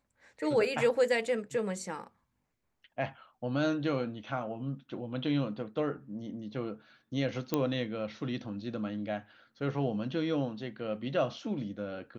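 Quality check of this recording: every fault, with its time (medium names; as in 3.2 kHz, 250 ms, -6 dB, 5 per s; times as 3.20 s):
7.54 s: pop -15 dBFS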